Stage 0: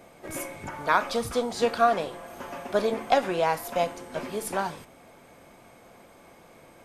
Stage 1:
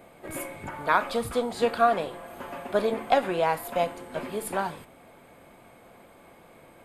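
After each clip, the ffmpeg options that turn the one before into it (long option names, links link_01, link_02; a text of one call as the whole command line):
ffmpeg -i in.wav -af "equalizer=frequency=5800:width_type=o:width=0.45:gain=-12.5" out.wav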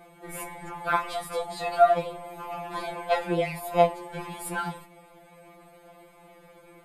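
ffmpeg -i in.wav -af "afftfilt=real='re*2.83*eq(mod(b,8),0)':imag='im*2.83*eq(mod(b,8),0)':win_size=2048:overlap=0.75,volume=1.5dB" out.wav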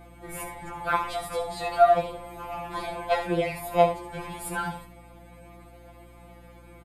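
ffmpeg -i in.wav -af "aecho=1:1:71:0.335,aeval=exprs='val(0)+0.00316*(sin(2*PI*60*n/s)+sin(2*PI*2*60*n/s)/2+sin(2*PI*3*60*n/s)/3+sin(2*PI*4*60*n/s)/4+sin(2*PI*5*60*n/s)/5)':channel_layout=same" out.wav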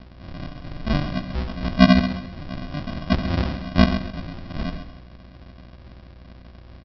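ffmpeg -i in.wav -af "aresample=11025,acrusher=samples=25:mix=1:aa=0.000001,aresample=44100,aecho=1:1:132|264|396:0.316|0.0917|0.0266,volume=4dB" out.wav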